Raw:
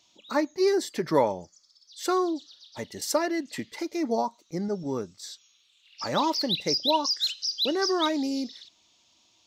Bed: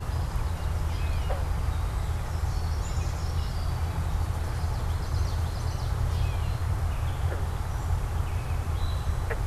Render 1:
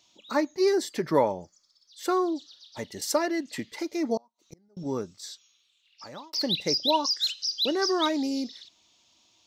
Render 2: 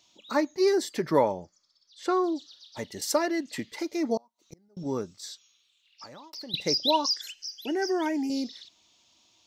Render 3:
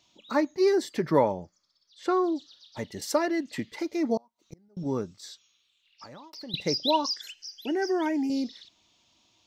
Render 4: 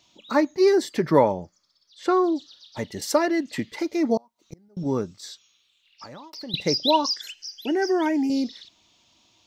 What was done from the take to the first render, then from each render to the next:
1.06–2.32 bell 5500 Hz -5 dB 1.8 oct; 4.17–4.77 flipped gate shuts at -31 dBFS, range -34 dB; 5.29–6.33 fade out
1.4–2.24 air absorption 73 m; 6.05–6.54 compressor 3:1, threshold -43 dBFS; 7.21–8.3 fixed phaser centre 790 Hz, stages 8
tone controls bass +4 dB, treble -5 dB
gain +4.5 dB

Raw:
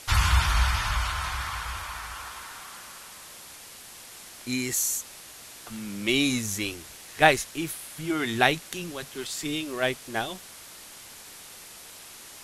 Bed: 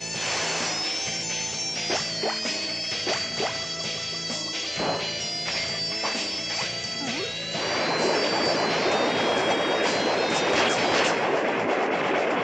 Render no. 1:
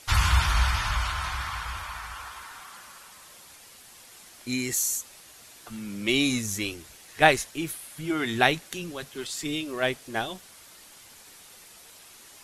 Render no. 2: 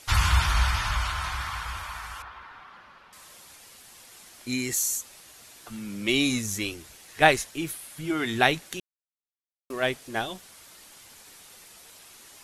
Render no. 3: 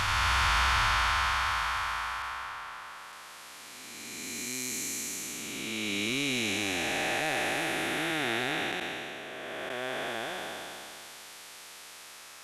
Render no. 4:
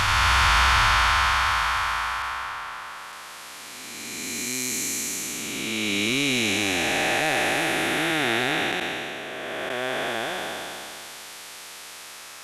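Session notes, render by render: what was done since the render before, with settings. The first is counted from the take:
denoiser 6 dB, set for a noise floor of -46 dBFS
2.22–3.13 air absorption 320 m; 8.8–9.7 mute
time blur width 0.926 s; overdrive pedal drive 13 dB, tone 4300 Hz, clips at -14.5 dBFS
gain +7 dB

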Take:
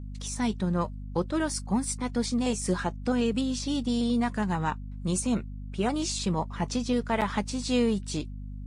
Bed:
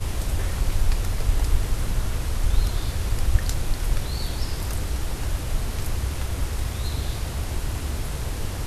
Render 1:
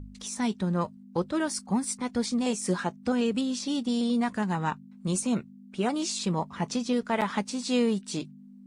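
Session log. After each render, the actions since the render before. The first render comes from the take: de-hum 50 Hz, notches 3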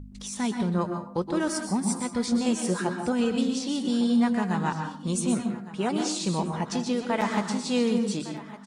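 echo 1.158 s -16 dB; plate-style reverb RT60 0.53 s, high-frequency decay 0.6×, pre-delay 0.11 s, DRR 4.5 dB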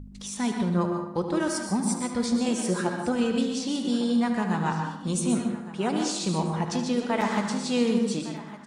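darkening echo 74 ms, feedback 52%, low-pass 4100 Hz, level -9 dB; Schroeder reverb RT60 0.88 s, combs from 33 ms, DRR 16.5 dB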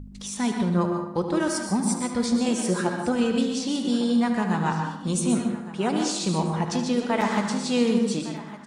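gain +2 dB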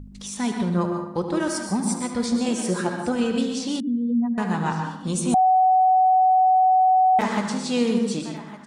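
3.8–4.38 spectral contrast raised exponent 2.5; 5.34–7.19 bleep 748 Hz -13.5 dBFS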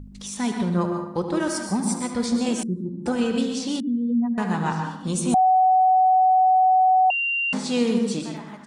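2.63–3.06 inverse Chebyshev low-pass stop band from 640 Hz; 7.1–7.53 bleep 2770 Hz -21 dBFS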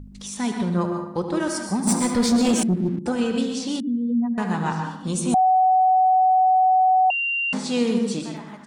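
1.87–2.99 sample leveller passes 2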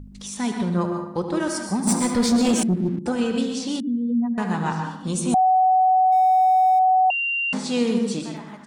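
6.12–6.79 zero-crossing step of -38.5 dBFS

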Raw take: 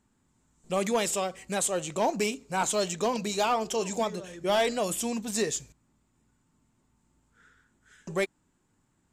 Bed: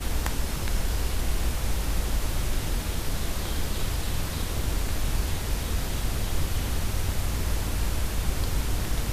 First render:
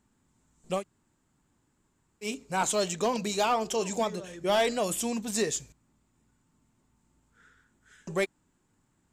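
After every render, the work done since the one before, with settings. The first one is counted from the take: 0.79–2.26 room tone, crossfade 0.10 s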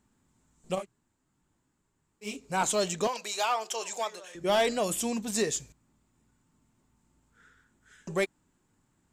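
0.75–2.44 detuned doubles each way 45 cents; 3.07–4.35 HPF 720 Hz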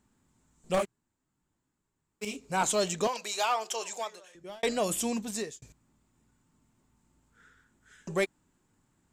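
0.74–2.25 sample leveller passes 3; 3.75–4.63 fade out; 5.16–5.62 fade out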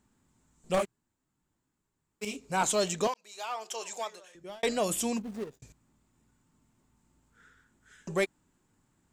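3.14–4.06 fade in; 5.19–5.6 median filter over 41 samples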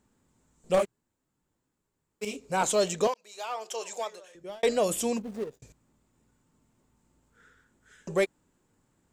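bell 500 Hz +6.5 dB 0.69 oct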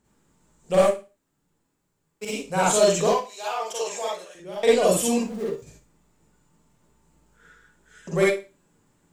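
Schroeder reverb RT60 0.3 s, DRR -5.5 dB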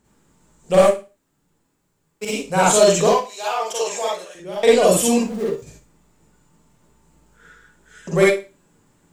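gain +5.5 dB; limiter -3 dBFS, peak gain reduction 2 dB

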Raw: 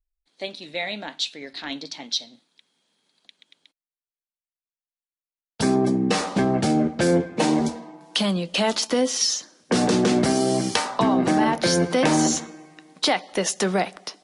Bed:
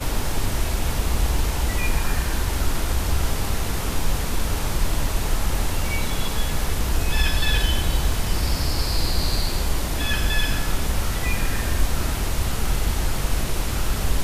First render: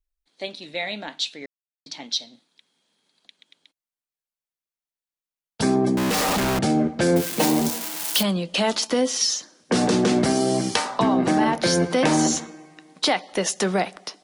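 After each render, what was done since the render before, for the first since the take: 1.46–1.86 mute; 5.97–6.59 infinite clipping; 7.16–8.23 switching spikes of -15.5 dBFS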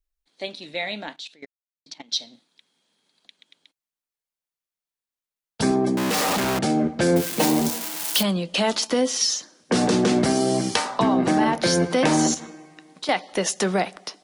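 1.13–2.13 level quantiser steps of 18 dB; 5.71–6.83 HPF 150 Hz 6 dB/oct; 12.34–13.09 compressor, threshold -30 dBFS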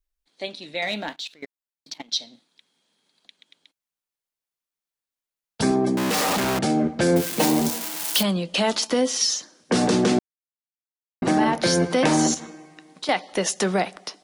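0.82–2.12 sample leveller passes 1; 10.19–11.22 mute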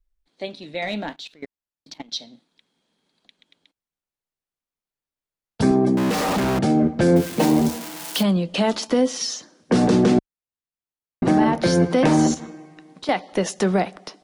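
tilt -2 dB/oct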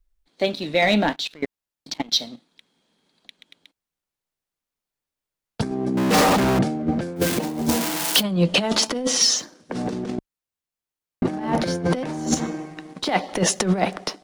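negative-ratio compressor -23 dBFS, ratio -0.5; sample leveller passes 1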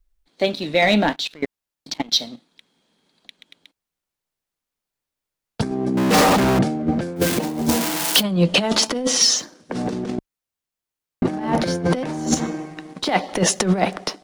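gain +2 dB

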